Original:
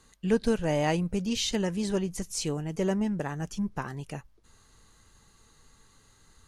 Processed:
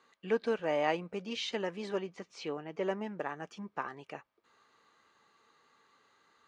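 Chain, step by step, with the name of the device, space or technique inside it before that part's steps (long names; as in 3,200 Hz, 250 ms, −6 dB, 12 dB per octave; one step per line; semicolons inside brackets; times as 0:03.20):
tin-can telephone (band-pass filter 400–3,000 Hz; hollow resonant body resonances 1,200/2,300 Hz, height 7 dB)
0:02.07–0:02.83: low-pass filter 4,900 Hz 12 dB per octave
level −1.5 dB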